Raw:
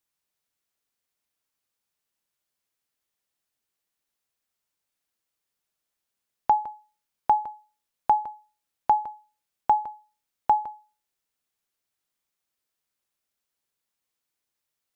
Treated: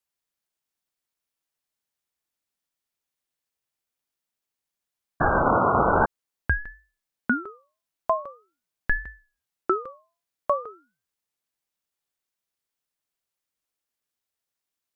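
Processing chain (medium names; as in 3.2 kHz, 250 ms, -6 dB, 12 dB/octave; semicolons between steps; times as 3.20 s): painted sound noise, 5.20–6.06 s, 230–1300 Hz -17 dBFS; ring modulator with a swept carrier 530 Hz, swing 70%, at 0.44 Hz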